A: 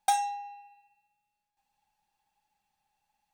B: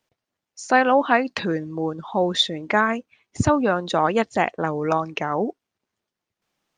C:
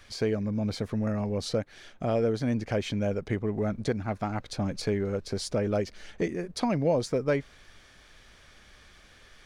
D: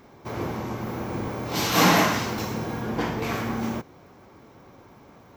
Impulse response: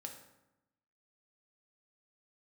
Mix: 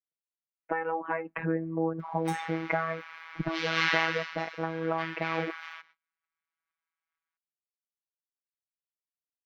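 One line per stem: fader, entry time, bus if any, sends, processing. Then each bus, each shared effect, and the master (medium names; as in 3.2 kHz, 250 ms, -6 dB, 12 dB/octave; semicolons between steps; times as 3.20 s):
-13.0 dB, 2.20 s, no send, none
-3.5 dB, 0.00 s, no send, elliptic low-pass 2.3 kHz, stop band 50 dB; compression, threshold -22 dBFS, peak gain reduction 10 dB
mute
+3.0 dB, 2.00 s, no send, Gaussian low-pass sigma 2.5 samples; short-mantissa float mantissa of 8-bit; high-pass 1.5 kHz 24 dB/octave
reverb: none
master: gate -57 dBFS, range -31 dB; gain riding 2 s; robot voice 163 Hz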